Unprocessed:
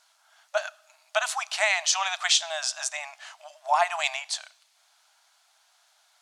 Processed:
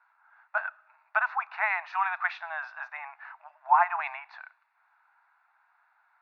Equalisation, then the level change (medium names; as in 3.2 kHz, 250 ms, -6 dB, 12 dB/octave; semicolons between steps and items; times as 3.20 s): distance through air 280 m; cabinet simulation 490–3000 Hz, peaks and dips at 910 Hz +6 dB, 1.5 kHz +4 dB, 2.8 kHz +6 dB; static phaser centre 1.3 kHz, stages 4; +2.0 dB